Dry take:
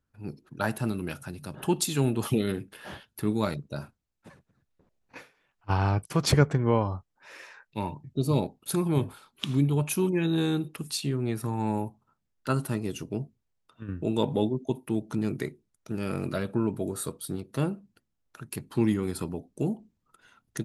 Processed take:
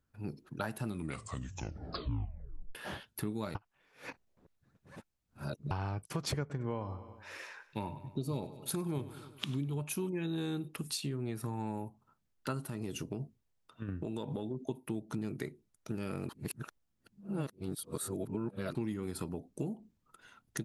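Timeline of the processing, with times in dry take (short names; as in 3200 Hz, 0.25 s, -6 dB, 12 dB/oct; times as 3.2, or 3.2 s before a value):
0.85 tape stop 1.90 s
3.55–5.71 reverse
6.4–9.79 feedback echo 98 ms, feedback 50%, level -17 dB
12.62–14.66 compressor, threshold -29 dBFS
16.29–18.75 reverse
whole clip: compressor 4:1, threshold -35 dBFS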